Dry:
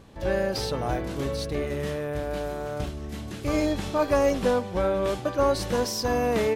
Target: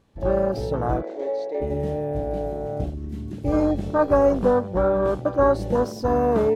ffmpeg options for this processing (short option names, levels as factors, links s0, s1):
-filter_complex "[0:a]afwtdn=0.0398,asplit=3[s0][s1][s2];[s0]afade=t=out:st=1.01:d=0.02[s3];[s1]highpass=f=390:w=0.5412,highpass=f=390:w=1.3066,equalizer=f=580:t=q:w=4:g=4,equalizer=f=1200:t=q:w=4:g=-4,equalizer=f=2000:t=q:w=4:g=7,equalizer=f=2900:t=q:w=4:g=-6,equalizer=f=5200:t=q:w=4:g=-5,lowpass=f=6300:w=0.5412,lowpass=f=6300:w=1.3066,afade=t=in:st=1.01:d=0.02,afade=t=out:st=1.6:d=0.02[s4];[s2]afade=t=in:st=1.6:d=0.02[s5];[s3][s4][s5]amix=inputs=3:normalize=0,volume=1.68"